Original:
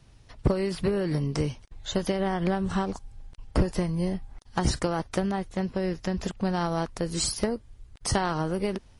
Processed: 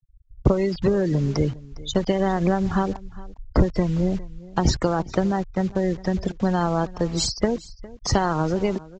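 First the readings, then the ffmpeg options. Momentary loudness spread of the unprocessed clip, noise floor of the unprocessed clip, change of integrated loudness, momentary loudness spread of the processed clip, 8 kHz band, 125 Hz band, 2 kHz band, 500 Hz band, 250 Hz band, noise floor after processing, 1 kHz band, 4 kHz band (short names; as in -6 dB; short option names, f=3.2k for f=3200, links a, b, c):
5 LU, -54 dBFS, +5.0 dB, 8 LU, +1.5 dB, +5.5 dB, +3.0 dB, +5.5 dB, +5.5 dB, -48 dBFS, +5.0 dB, +3.5 dB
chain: -filter_complex "[0:a]afftfilt=real='re*gte(hypot(re,im),0.0251)':imag='im*gte(hypot(re,im),0.0251)':win_size=1024:overlap=0.75,acrossover=split=150|1400|3500[a][b][c][d];[b]acrusher=bits=7:mix=0:aa=0.000001[e];[c]alimiter=level_in=10dB:limit=-24dB:level=0:latency=1,volume=-10dB[f];[a][e][f][d]amix=inputs=4:normalize=0,aecho=1:1:407:0.1,aresample=16000,aresample=44100,volume=5.5dB"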